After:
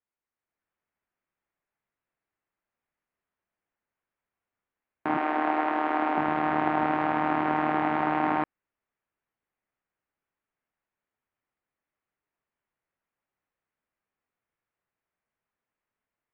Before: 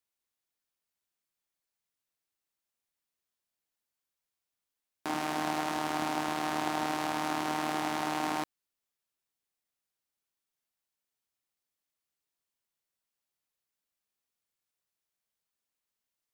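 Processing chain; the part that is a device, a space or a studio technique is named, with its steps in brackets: 5.17–6.18 s: high-pass 270 Hz 24 dB/octave; action camera in a waterproof case (low-pass 2.2 kHz 24 dB/octave; level rider gain up to 7 dB; AAC 96 kbps 48 kHz)

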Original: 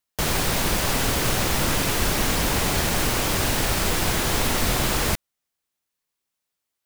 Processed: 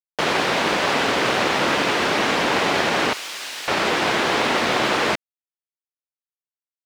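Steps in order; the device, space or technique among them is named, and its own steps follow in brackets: phone line with mismatched companding (band-pass 300–3400 Hz; companding laws mixed up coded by A); 3.13–3.68 s: pre-emphasis filter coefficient 0.97; trim +8 dB

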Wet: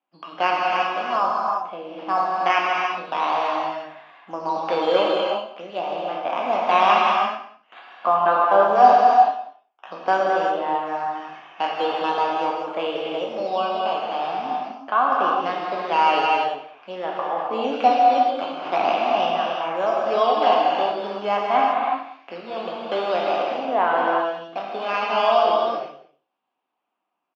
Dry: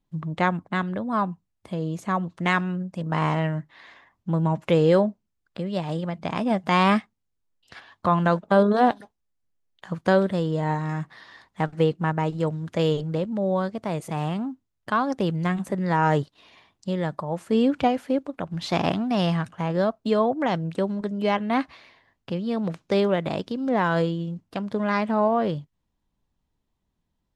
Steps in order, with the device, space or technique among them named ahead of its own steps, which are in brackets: spectral sustain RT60 0.41 s; circuit-bent sampling toy (decimation with a swept rate 8×, swing 100% 0.45 Hz; cabinet simulation 410–4500 Hz, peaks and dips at 470 Hz -4 dB, 730 Hz +8 dB, 1.2 kHz +4 dB, 1.9 kHz -7 dB, 2.7 kHz +5 dB, 4 kHz -8 dB); three-band isolator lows -18 dB, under 210 Hz, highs -21 dB, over 5.4 kHz; echo from a far wall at 33 m, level -18 dB; gated-style reverb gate 400 ms flat, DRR -2.5 dB; trim -1 dB

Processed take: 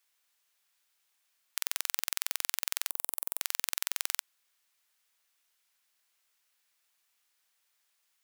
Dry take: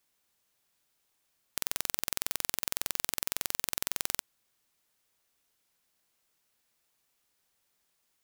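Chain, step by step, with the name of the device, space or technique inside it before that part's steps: filter by subtraction (in parallel: low-pass 1.8 kHz 12 dB/octave + polarity flip); 2.90–3.41 s: on the sum: high-order bell 3 kHz -13.5 dB 2.6 oct

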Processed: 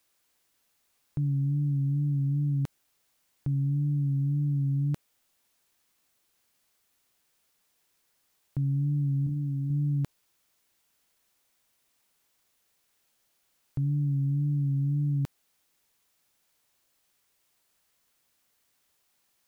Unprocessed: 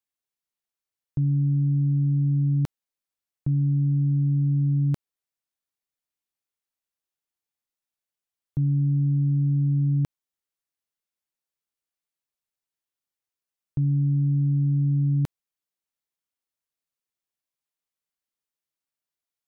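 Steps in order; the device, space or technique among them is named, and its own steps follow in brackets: 9.24–9.70 s: flutter echo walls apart 4.1 m, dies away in 0.33 s; noise-reduction cassette on a plain deck (tape noise reduction on one side only encoder only; wow and flutter; white noise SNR 41 dB); trim -5 dB

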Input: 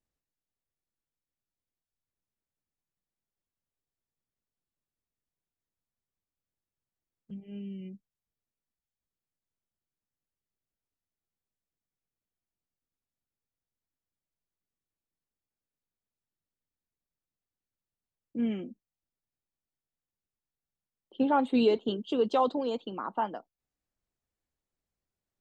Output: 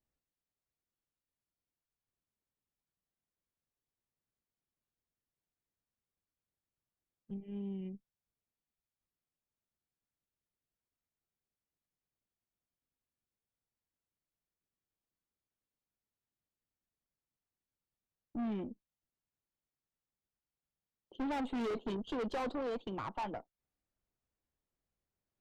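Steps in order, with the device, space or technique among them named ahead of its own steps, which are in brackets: tube preamp driven hard (valve stage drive 36 dB, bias 0.55; treble shelf 3.2 kHz -9 dB); trim +2 dB

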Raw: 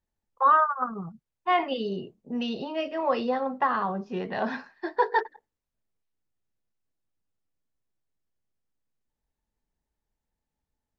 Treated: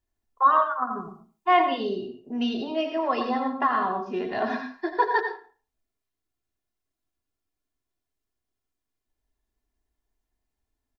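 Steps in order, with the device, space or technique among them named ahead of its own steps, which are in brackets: microphone above a desk (comb 2.9 ms, depth 61%; reverberation RT60 0.35 s, pre-delay 76 ms, DRR 6.5 dB); 0.90–1.60 s: treble shelf 4.6 kHz +6.5 dB

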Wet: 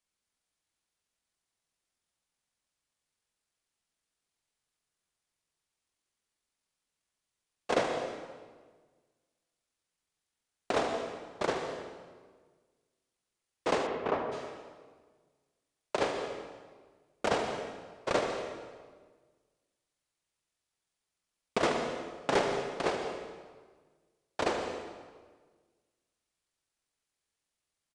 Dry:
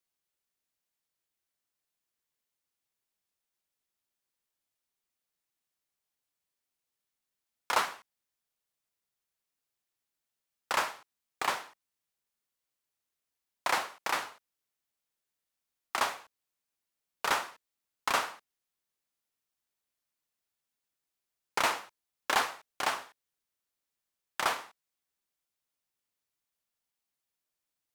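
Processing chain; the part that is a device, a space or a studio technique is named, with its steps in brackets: monster voice (pitch shift -12 st; bass shelf 110 Hz +5 dB; delay 79 ms -11 dB; reverberation RT60 1.5 s, pre-delay 115 ms, DRR 6 dB); 13.86–14.31 s: low-pass 3.4 kHz -> 1.5 kHz 12 dB/octave

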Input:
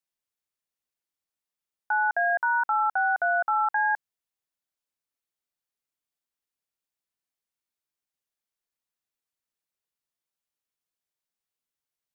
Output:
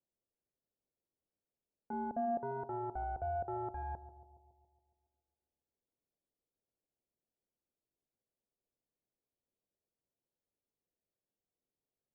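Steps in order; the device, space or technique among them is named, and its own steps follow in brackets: 1.93–2.43 s: bass shelf 390 Hz +11.5 dB; overdriven synthesiser ladder filter (saturation -33.5 dBFS, distortion -6 dB; four-pole ladder low-pass 690 Hz, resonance 25%); bucket-brigade echo 139 ms, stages 1024, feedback 60%, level -13 dB; trim +11 dB

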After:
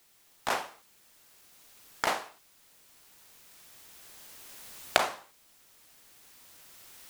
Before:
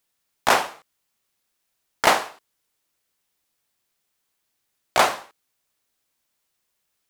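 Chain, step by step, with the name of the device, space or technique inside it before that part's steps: cheap recorder with automatic gain (white noise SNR 23 dB; recorder AGC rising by 6.4 dB/s); trim -12.5 dB

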